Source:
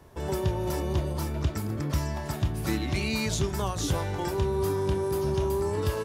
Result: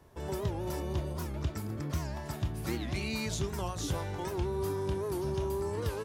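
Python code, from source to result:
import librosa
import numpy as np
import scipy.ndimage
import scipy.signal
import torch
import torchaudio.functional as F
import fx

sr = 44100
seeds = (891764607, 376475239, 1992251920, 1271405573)

y = fx.record_warp(x, sr, rpm=78.0, depth_cents=160.0)
y = y * 10.0 ** (-6.0 / 20.0)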